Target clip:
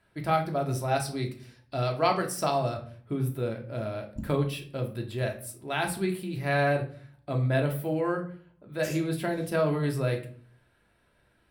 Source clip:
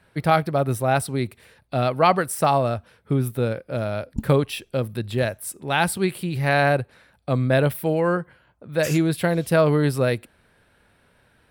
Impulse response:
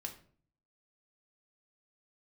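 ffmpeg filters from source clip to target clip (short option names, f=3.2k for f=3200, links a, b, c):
-filter_complex "[0:a]asettb=1/sr,asplit=3[a][b][c];[a]atrim=end=0.614[d];[b]atrim=start=0.61:end=2.74,asetpts=PTS-STARTPTS,afade=t=in:d=0.004:c=qsin,afade=t=out:st=2.126:d=0.004:c=qsin,equalizer=f=5.4k:w=1.8:g=11.5[e];[c]atrim=start=2.736[f];[d][e]acrossfade=d=0.004:c1=hsin:c2=qsin[g];[g][f]acrossfade=d=0.004:c1=qsin:c2=hsin[h];[1:a]atrim=start_sample=2205[i];[h][i]afir=irnorm=-1:irlink=0,volume=-5.5dB"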